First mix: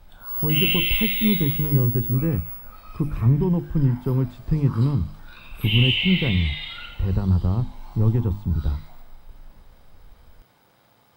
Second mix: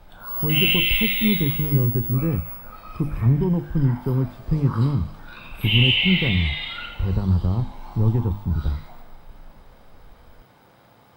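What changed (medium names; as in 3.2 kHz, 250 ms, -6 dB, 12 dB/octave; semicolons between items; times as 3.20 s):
background +7.0 dB; master: add treble shelf 2.7 kHz -7.5 dB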